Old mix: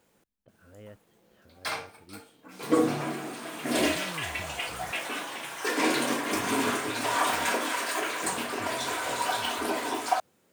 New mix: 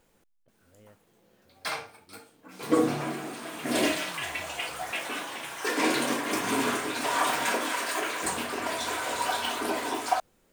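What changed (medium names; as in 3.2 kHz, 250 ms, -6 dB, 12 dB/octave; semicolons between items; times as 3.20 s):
speech -8.5 dB; background: remove high-pass 93 Hz 24 dB/octave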